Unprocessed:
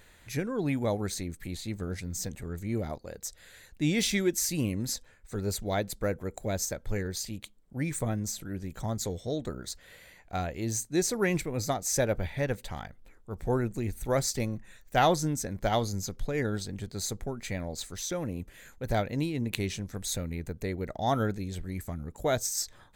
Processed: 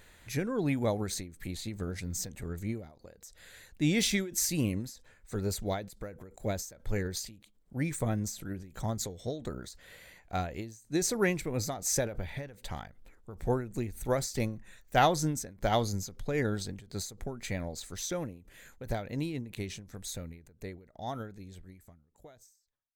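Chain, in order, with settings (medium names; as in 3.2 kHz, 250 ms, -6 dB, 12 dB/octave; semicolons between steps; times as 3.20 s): fade out at the end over 5.53 s; endings held to a fixed fall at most 110 dB/s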